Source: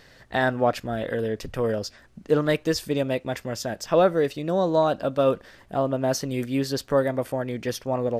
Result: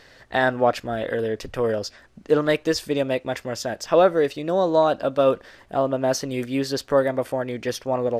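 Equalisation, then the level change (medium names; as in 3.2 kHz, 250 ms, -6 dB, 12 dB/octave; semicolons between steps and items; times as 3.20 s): tone controls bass -4 dB, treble 0 dB; peaking EQ 170 Hz -3 dB 0.78 oct; treble shelf 11 kHz -8 dB; +3.0 dB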